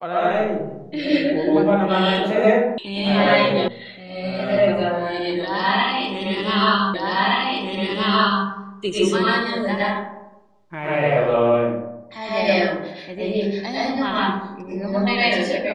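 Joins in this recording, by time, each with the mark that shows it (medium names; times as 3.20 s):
2.78 s: sound stops dead
3.68 s: sound stops dead
6.94 s: repeat of the last 1.52 s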